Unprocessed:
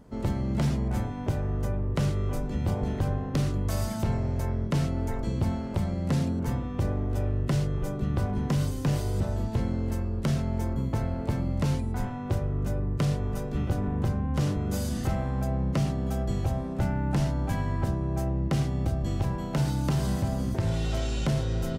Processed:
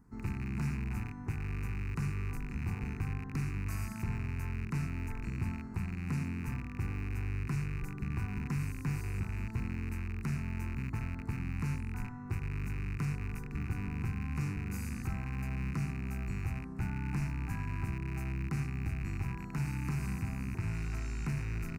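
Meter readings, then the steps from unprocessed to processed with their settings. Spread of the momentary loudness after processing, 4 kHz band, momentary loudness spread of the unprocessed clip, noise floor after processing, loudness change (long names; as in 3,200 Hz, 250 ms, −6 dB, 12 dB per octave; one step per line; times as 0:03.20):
3 LU, −14.0 dB, 3 LU, −43 dBFS, −8.5 dB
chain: loose part that buzzes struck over −30 dBFS, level −23 dBFS
phaser with its sweep stopped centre 1,400 Hz, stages 4
level −7.5 dB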